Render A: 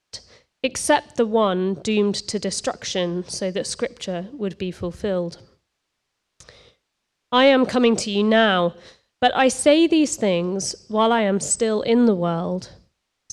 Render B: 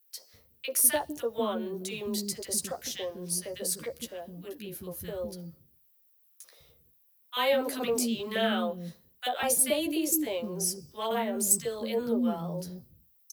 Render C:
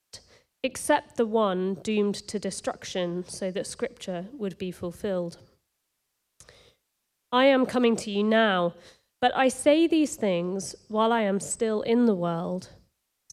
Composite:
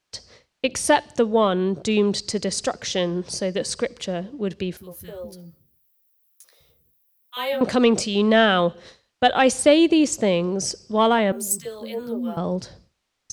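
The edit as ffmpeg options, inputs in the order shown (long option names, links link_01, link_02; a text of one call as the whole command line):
ffmpeg -i take0.wav -i take1.wav -filter_complex "[1:a]asplit=2[link_01][link_02];[0:a]asplit=3[link_03][link_04][link_05];[link_03]atrim=end=4.772[link_06];[link_01]atrim=start=4.768:end=7.612[link_07];[link_04]atrim=start=7.608:end=11.322[link_08];[link_02]atrim=start=11.318:end=12.372[link_09];[link_05]atrim=start=12.368[link_10];[link_06][link_07]acrossfade=duration=0.004:curve1=hsin:curve2=hsin[link_11];[link_11][link_08]acrossfade=duration=0.004:curve1=hsin:curve2=hsin[link_12];[link_12][link_09]acrossfade=duration=0.004:curve1=hsin:curve2=hsin[link_13];[link_13][link_10]acrossfade=duration=0.004:curve1=hsin:curve2=hsin" out.wav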